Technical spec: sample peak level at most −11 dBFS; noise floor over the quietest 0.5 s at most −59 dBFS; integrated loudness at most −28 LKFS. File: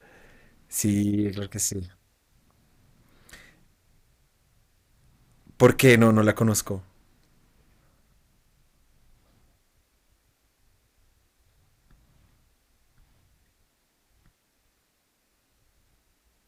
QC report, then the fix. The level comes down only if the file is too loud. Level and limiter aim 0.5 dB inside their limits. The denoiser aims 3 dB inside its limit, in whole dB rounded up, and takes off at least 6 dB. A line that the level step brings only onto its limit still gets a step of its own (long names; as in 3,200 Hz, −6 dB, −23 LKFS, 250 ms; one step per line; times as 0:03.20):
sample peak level −5.0 dBFS: out of spec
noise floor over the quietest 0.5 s −71 dBFS: in spec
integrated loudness −22.0 LKFS: out of spec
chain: level −6.5 dB